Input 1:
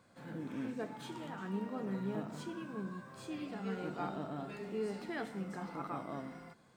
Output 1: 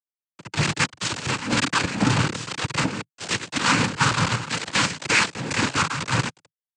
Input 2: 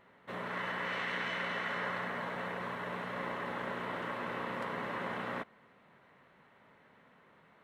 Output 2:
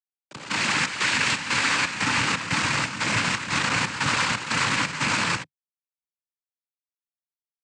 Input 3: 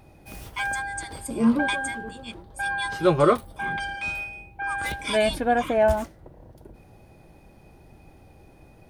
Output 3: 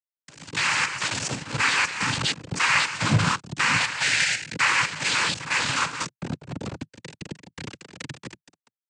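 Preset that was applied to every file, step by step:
partial rectifier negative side -12 dB; FFT band-reject 190–1200 Hz; compression 2:1, threshold -41 dBFS; peak limiter -35 dBFS; level rider gain up to 10.5 dB; bit crusher 6-bit; square tremolo 2 Hz, depth 65%, duty 70%; noise-vocoded speech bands 8; MP3 144 kbps 22.05 kHz; normalise loudness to -23 LUFS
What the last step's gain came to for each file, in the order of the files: +18.5 dB, +14.5 dB, +13.5 dB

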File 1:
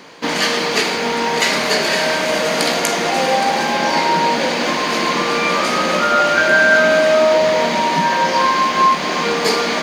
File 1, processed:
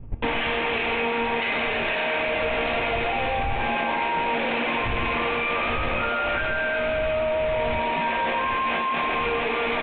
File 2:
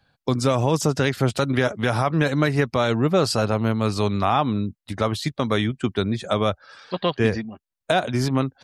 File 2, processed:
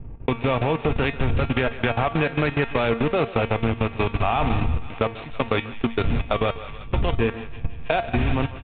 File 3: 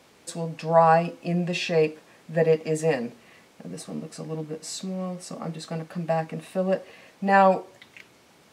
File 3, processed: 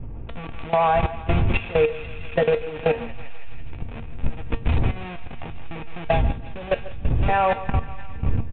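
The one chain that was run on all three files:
send-on-delta sampling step -24 dBFS; wind noise 100 Hz -25 dBFS; in parallel at -4 dB: saturation -10.5 dBFS; on the sum: graphic EQ with 31 bands 200 Hz -9 dB, 800 Hz +4 dB, 2.5 kHz +9 dB; on a send: thinning echo 163 ms, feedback 76%, high-pass 730 Hz, level -10 dB; on the sum: vibrato 6.4 Hz 9.5 cents; level held to a coarse grid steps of 18 dB; resampled via 8 kHz; feedback comb 230 Hz, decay 0.25 s, harmonics all, mix 70%; compression 6:1, threshold -26 dBFS; distance through air 85 m; delay 142 ms -18.5 dB; normalise loudness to -24 LUFS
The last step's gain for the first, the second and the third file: +5.5 dB, +9.5 dB, +11.5 dB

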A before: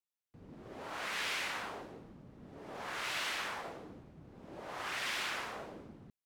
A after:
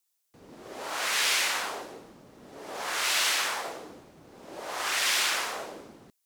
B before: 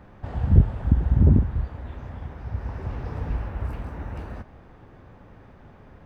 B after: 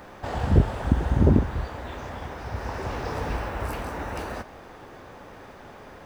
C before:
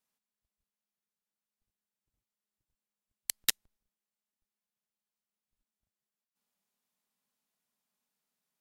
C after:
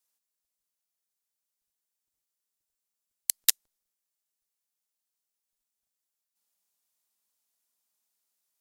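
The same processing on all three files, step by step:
tone controls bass -13 dB, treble +10 dB; normalise loudness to -27 LUFS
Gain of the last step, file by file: +8.5 dB, +9.0 dB, -2.0 dB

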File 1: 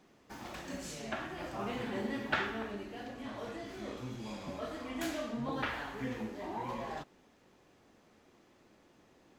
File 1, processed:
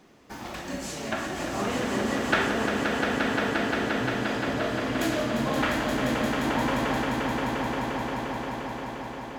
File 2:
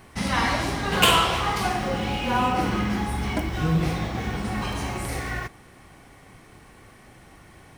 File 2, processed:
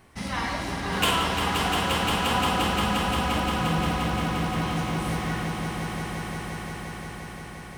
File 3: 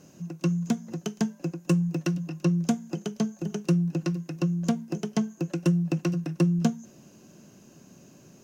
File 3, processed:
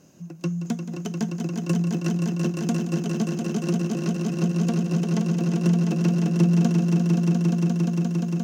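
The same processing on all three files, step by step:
echo with a slow build-up 175 ms, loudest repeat 5, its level -6 dB; peak normalisation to -9 dBFS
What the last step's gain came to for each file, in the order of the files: +8.0 dB, -6.0 dB, -1.5 dB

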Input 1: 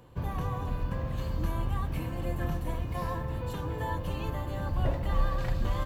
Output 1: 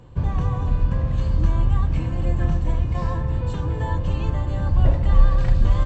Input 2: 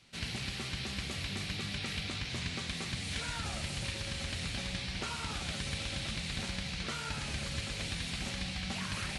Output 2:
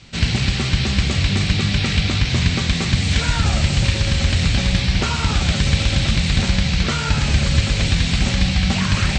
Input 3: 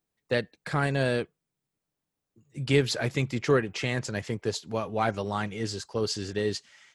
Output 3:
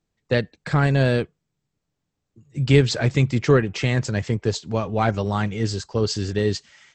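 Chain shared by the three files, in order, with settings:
brick-wall FIR low-pass 8.3 kHz; bass shelf 170 Hz +10.5 dB; peak normalisation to -3 dBFS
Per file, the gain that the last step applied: +3.0 dB, +15.5 dB, +4.0 dB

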